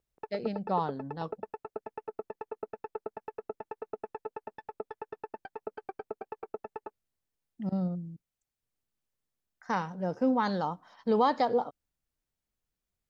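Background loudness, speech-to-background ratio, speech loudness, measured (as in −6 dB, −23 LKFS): −43.0 LKFS, 11.5 dB, −31.5 LKFS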